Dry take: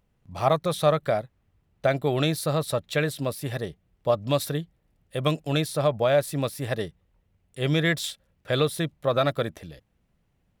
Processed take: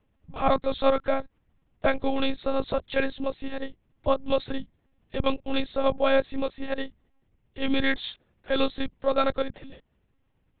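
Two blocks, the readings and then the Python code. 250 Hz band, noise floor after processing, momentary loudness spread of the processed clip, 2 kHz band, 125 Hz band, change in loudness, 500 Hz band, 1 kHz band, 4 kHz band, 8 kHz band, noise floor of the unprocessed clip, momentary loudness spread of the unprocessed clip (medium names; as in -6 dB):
0.0 dB, -70 dBFS, 13 LU, -0.5 dB, -14.5 dB, -1.5 dB, -1.5 dB, 0.0 dB, -2.0 dB, under -40 dB, -70 dBFS, 10 LU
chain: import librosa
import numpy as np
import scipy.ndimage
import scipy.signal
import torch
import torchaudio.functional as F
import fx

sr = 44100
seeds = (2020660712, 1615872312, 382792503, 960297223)

y = fx.lpc_monotone(x, sr, seeds[0], pitch_hz=270.0, order=10)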